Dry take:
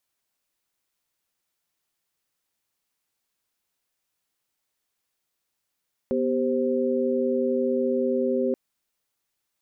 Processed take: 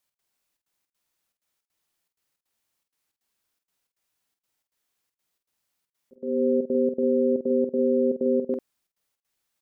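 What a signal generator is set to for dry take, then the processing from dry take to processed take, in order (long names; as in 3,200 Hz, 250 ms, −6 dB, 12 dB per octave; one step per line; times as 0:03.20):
held notes B3/G4/C5 sine, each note −25.5 dBFS 2.43 s
volume swells 330 ms
gate pattern "x.xxxx.x" 159 BPM −24 dB
double-tracking delay 48 ms −6.5 dB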